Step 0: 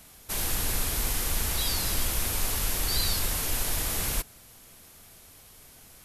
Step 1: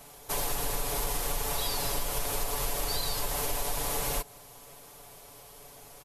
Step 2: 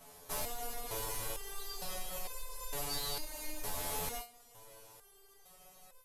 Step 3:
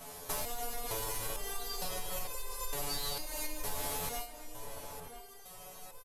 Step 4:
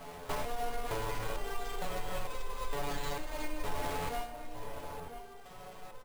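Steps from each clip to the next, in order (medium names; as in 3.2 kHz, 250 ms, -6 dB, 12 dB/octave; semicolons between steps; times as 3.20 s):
high-order bell 660 Hz +8.5 dB; comb 7 ms, depth 72%; compression, threshold -25 dBFS, peak gain reduction 7.5 dB; trim -1.5 dB
in parallel at -10 dB: wavefolder -28 dBFS; on the sum: resonator arpeggio 2.2 Hz 86–510 Hz; trim +1 dB
compression, threshold -42 dBFS, peak gain reduction 9 dB; echo from a far wall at 170 m, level -8 dB; trim +8.5 dB
median filter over 9 samples; careless resampling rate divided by 4×, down none, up hold; on a send at -14 dB: reverberation RT60 2.3 s, pre-delay 5 ms; on the sum: trim +4 dB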